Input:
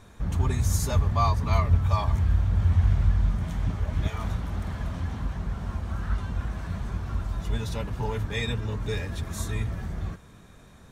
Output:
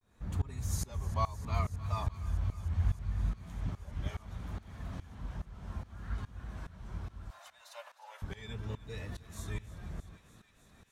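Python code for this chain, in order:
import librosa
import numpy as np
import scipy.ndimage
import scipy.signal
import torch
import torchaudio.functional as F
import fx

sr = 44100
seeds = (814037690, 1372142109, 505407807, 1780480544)

p1 = fx.steep_highpass(x, sr, hz=540.0, slope=96, at=(7.29, 8.23))
p2 = fx.vibrato(p1, sr, rate_hz=0.69, depth_cents=89.0)
p3 = fx.tremolo_shape(p2, sr, shape='saw_up', hz=2.4, depth_pct=95)
p4 = p3 + fx.echo_thinned(p3, sr, ms=308, feedback_pct=84, hz=840.0, wet_db=-16.5, dry=0)
y = p4 * 10.0 ** (-7.0 / 20.0)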